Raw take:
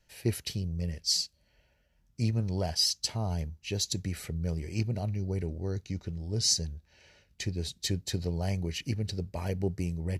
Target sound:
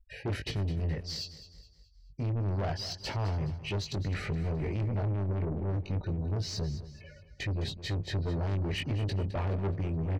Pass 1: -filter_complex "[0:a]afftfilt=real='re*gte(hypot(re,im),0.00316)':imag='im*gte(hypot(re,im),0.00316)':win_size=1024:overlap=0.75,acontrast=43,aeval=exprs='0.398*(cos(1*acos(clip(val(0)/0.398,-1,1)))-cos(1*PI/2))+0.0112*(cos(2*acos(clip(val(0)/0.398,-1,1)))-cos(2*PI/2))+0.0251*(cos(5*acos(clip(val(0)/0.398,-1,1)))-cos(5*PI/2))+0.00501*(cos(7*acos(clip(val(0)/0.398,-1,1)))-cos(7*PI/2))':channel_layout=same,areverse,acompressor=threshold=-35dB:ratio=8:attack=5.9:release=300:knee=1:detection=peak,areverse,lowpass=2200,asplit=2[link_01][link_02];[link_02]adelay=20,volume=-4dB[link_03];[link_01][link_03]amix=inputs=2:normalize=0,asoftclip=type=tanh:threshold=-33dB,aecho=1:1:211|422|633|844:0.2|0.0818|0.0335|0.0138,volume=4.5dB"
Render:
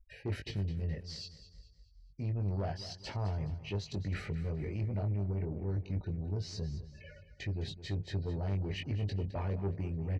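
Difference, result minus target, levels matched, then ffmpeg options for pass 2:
downward compressor: peak gain reduction +8.5 dB
-filter_complex "[0:a]afftfilt=real='re*gte(hypot(re,im),0.00316)':imag='im*gte(hypot(re,im),0.00316)':win_size=1024:overlap=0.75,acontrast=43,aeval=exprs='0.398*(cos(1*acos(clip(val(0)/0.398,-1,1)))-cos(1*PI/2))+0.0112*(cos(2*acos(clip(val(0)/0.398,-1,1)))-cos(2*PI/2))+0.0251*(cos(5*acos(clip(val(0)/0.398,-1,1)))-cos(5*PI/2))+0.00501*(cos(7*acos(clip(val(0)/0.398,-1,1)))-cos(7*PI/2))':channel_layout=same,areverse,acompressor=threshold=-25.5dB:ratio=8:attack=5.9:release=300:knee=1:detection=peak,areverse,lowpass=2200,asplit=2[link_01][link_02];[link_02]adelay=20,volume=-4dB[link_03];[link_01][link_03]amix=inputs=2:normalize=0,asoftclip=type=tanh:threshold=-33dB,aecho=1:1:211|422|633|844:0.2|0.0818|0.0335|0.0138,volume=4.5dB"

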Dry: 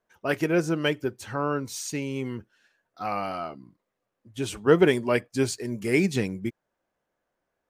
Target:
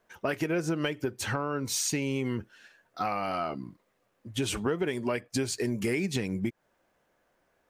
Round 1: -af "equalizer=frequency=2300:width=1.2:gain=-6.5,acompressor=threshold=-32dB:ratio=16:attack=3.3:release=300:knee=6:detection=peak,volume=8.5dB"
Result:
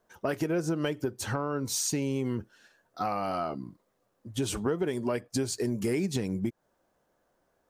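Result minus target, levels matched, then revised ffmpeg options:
2,000 Hz band −5.0 dB
-af "equalizer=frequency=2300:width=1.2:gain=2,acompressor=threshold=-32dB:ratio=16:attack=3.3:release=300:knee=6:detection=peak,volume=8.5dB"

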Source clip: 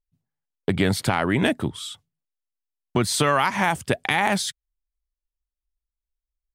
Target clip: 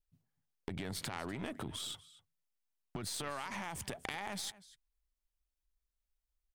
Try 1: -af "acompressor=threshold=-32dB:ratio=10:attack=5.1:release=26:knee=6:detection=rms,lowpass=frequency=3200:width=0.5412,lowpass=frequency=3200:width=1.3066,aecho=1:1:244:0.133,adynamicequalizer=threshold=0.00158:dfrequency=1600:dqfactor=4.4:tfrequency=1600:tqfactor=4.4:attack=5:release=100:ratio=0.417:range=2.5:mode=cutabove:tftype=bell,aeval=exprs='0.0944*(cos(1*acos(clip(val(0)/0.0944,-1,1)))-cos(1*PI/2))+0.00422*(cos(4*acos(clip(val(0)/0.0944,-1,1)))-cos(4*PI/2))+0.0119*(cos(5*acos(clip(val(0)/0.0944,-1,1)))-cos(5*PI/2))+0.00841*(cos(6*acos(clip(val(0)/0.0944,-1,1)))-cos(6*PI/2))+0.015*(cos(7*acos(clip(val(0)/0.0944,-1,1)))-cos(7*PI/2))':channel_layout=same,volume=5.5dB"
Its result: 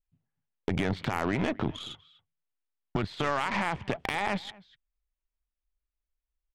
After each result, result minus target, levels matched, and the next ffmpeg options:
downward compressor: peak gain reduction −8.5 dB; 4,000 Hz band −6.5 dB
-af "acompressor=threshold=-41.5dB:ratio=10:attack=5.1:release=26:knee=6:detection=rms,lowpass=frequency=3200:width=0.5412,lowpass=frequency=3200:width=1.3066,aecho=1:1:244:0.133,adynamicequalizer=threshold=0.00158:dfrequency=1600:dqfactor=4.4:tfrequency=1600:tqfactor=4.4:attack=5:release=100:ratio=0.417:range=2.5:mode=cutabove:tftype=bell,aeval=exprs='0.0944*(cos(1*acos(clip(val(0)/0.0944,-1,1)))-cos(1*PI/2))+0.00422*(cos(4*acos(clip(val(0)/0.0944,-1,1)))-cos(4*PI/2))+0.0119*(cos(5*acos(clip(val(0)/0.0944,-1,1)))-cos(5*PI/2))+0.00841*(cos(6*acos(clip(val(0)/0.0944,-1,1)))-cos(6*PI/2))+0.015*(cos(7*acos(clip(val(0)/0.0944,-1,1)))-cos(7*PI/2))':channel_layout=same,volume=5.5dB"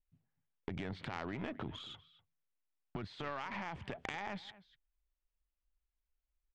4,000 Hz band −4.5 dB
-af "acompressor=threshold=-41.5dB:ratio=10:attack=5.1:release=26:knee=6:detection=rms,aecho=1:1:244:0.133,adynamicequalizer=threshold=0.00158:dfrequency=1600:dqfactor=4.4:tfrequency=1600:tqfactor=4.4:attack=5:release=100:ratio=0.417:range=2.5:mode=cutabove:tftype=bell,aeval=exprs='0.0944*(cos(1*acos(clip(val(0)/0.0944,-1,1)))-cos(1*PI/2))+0.00422*(cos(4*acos(clip(val(0)/0.0944,-1,1)))-cos(4*PI/2))+0.0119*(cos(5*acos(clip(val(0)/0.0944,-1,1)))-cos(5*PI/2))+0.00841*(cos(6*acos(clip(val(0)/0.0944,-1,1)))-cos(6*PI/2))+0.015*(cos(7*acos(clip(val(0)/0.0944,-1,1)))-cos(7*PI/2))':channel_layout=same,volume=5.5dB"

